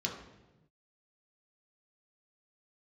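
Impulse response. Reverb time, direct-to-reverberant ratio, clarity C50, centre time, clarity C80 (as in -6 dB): 1.0 s, -1.0 dB, 5.5 dB, 32 ms, 8.0 dB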